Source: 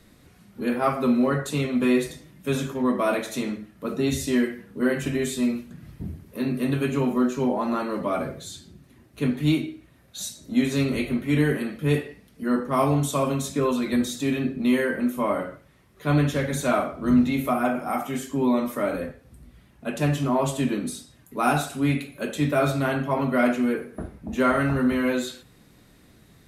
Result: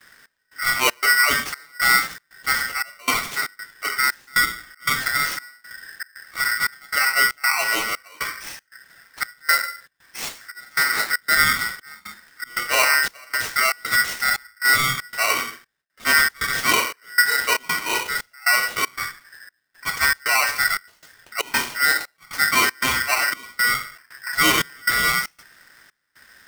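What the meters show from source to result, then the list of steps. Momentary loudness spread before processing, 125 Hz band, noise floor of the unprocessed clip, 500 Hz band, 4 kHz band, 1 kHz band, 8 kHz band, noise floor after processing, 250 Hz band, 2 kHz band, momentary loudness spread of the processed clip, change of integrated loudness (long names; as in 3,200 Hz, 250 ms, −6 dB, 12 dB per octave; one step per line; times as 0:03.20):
12 LU, −14.5 dB, −55 dBFS, −9.0 dB, +13.5 dB, +5.0 dB, +11.5 dB, −68 dBFS, −16.5 dB, +14.5 dB, 15 LU, +4.5 dB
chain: noise gate with hold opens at −48 dBFS
decimation without filtering 4×
gate pattern "xx..xxx.xx" 117 BPM −24 dB
ring modulator with a square carrier 1,700 Hz
level +3.5 dB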